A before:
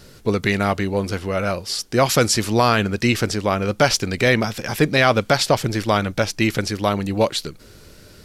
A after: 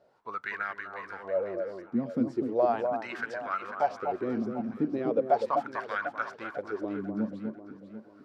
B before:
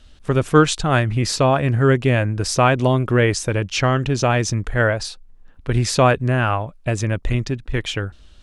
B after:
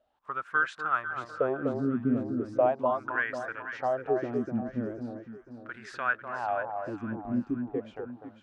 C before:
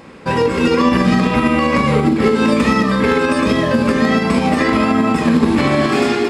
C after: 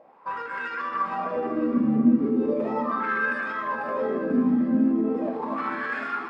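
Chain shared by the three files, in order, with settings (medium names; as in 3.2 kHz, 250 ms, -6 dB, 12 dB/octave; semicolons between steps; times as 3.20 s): wah-wah 0.38 Hz 230–1600 Hz, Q 7.7; echo whose repeats swap between lows and highs 248 ms, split 1.2 kHz, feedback 62%, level -5 dB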